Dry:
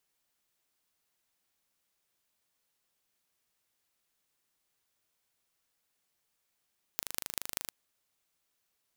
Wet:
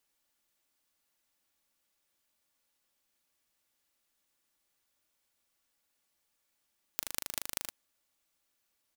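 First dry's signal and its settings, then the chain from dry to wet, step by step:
pulse train 25.8 per s, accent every 5, -4 dBFS 0.73 s
comb 3.5 ms, depth 35%

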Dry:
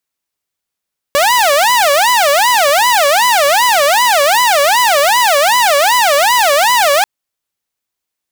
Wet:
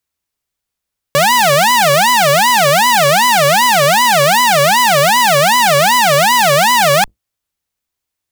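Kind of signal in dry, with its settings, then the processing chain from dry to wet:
siren wail 562–1000 Hz 2.6 per s saw -5.5 dBFS 5.89 s
octave divider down 2 oct, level +4 dB

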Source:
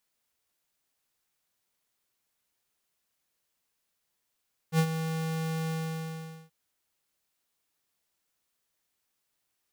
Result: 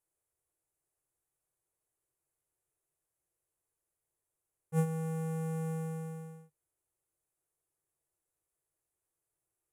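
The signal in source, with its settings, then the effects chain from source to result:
ADSR square 161 Hz, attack 68 ms, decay 70 ms, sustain -10 dB, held 0.98 s, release 800 ms -21.5 dBFS
FFT filter 150 Hz 0 dB, 230 Hz -20 dB, 330 Hz +1 dB, 2.5 kHz -15 dB, 4.3 kHz -29 dB, 7.2 kHz -7 dB, 11 kHz -2 dB, 15 kHz -18 dB

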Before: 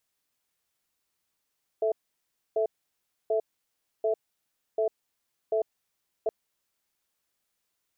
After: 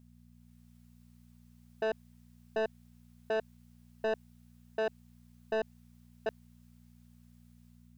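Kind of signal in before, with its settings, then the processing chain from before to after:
cadence 439 Hz, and 659 Hz, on 0.10 s, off 0.64 s, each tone -25.5 dBFS 4.47 s
level rider gain up to 5 dB; mains buzz 60 Hz, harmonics 4, -59 dBFS -1 dB/octave; saturation -28 dBFS

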